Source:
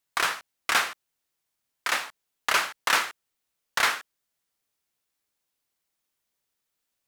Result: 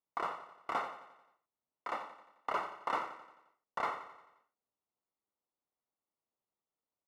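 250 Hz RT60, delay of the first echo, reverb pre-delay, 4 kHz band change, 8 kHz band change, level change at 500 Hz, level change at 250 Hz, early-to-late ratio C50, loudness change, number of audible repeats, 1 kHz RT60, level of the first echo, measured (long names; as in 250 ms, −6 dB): no reverb audible, 88 ms, no reverb audible, −24.5 dB, below −30 dB, −4.5 dB, −5.5 dB, no reverb audible, −13.0 dB, 5, no reverb audible, −12.0 dB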